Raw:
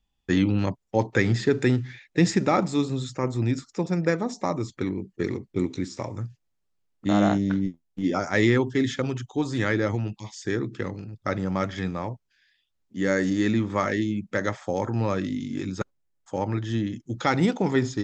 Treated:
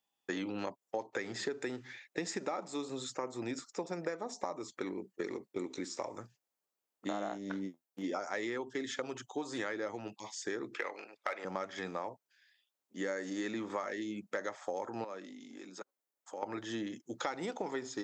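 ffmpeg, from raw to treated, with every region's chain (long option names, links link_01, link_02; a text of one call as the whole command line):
ffmpeg -i in.wav -filter_complex "[0:a]asettb=1/sr,asplit=3[link_01][link_02][link_03];[link_01]atrim=end=10.744[link_04];[link_02]atrim=start=10.74:end=11.45,asetpts=PTS-STARTPTS,afade=type=in:duration=0.004:curve=qsin,afade=type=out:start_time=0.706:duration=0.004:curve=qsin,highpass=400,equalizer=frequency=2300:width=3.3:gain=10.5,asplit=2[link_05][link_06];[link_06]highpass=frequency=720:poles=1,volume=12dB,asoftclip=type=tanh:threshold=-12.5dB[link_07];[link_05][link_07]amix=inputs=2:normalize=0,lowpass=frequency=2900:poles=1,volume=-6dB[link_08];[link_03]atrim=start=11.446[link_09];[link_04][link_08]acrossfade=duration=0.004:curve1=hsin:curve2=qsin[link_10];[link_10][link_09]acrossfade=duration=0.004:curve1=qsin:curve2=hsin,asettb=1/sr,asplit=3[link_11][link_12][link_13];[link_11]atrim=end=15.044[link_14];[link_12]atrim=start=15.04:end=16.43,asetpts=PTS-STARTPTS,afade=type=in:duration=0.004:curve=qsin,afade=type=out:start_time=1.386:duration=0.004:curve=qsin,highpass=frequency=170:width=0.5412,highpass=frequency=170:width=1.3066,acompressor=threshold=-42dB:ratio=2.5:attack=3.2:release=140:knee=1:detection=peak[link_15];[link_13]atrim=start=16.426[link_16];[link_14][link_15]acrossfade=duration=0.004:curve1=hsin:curve2=qsin[link_17];[link_17][link_16]acrossfade=duration=0.004:curve1=qsin:curve2=hsin,highpass=610,equalizer=frequency=2900:width=0.32:gain=-10,acompressor=threshold=-39dB:ratio=10,volume=5.5dB" out.wav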